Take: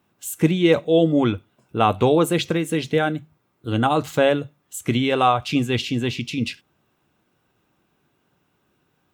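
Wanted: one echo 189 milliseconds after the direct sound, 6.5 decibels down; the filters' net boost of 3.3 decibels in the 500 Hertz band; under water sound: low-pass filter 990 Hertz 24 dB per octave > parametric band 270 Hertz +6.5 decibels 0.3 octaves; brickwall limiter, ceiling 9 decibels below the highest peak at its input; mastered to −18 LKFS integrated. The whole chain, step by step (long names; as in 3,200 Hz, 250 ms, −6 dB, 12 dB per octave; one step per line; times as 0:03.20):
parametric band 500 Hz +3.5 dB
brickwall limiter −11.5 dBFS
low-pass filter 990 Hz 24 dB per octave
parametric band 270 Hz +6.5 dB 0.3 octaves
single-tap delay 189 ms −6.5 dB
level +3 dB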